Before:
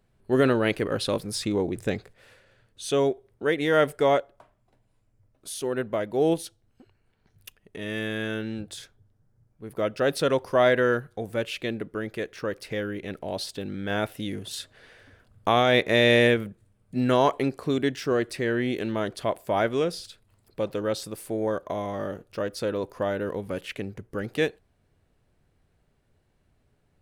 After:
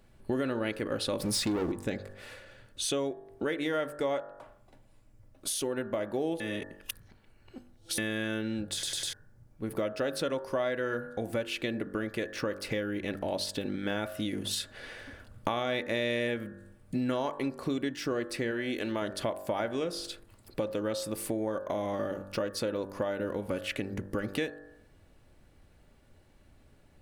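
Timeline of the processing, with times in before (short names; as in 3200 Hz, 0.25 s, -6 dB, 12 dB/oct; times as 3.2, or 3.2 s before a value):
1.2–1.72 sample leveller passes 3
6.4–7.98 reverse
8.73 stutter in place 0.10 s, 4 plays
18.51–19.02 bell 150 Hz -7 dB 2.3 oct
whole clip: comb 3.5 ms, depth 30%; de-hum 48.98 Hz, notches 38; compressor 5:1, threshold -38 dBFS; gain +7.5 dB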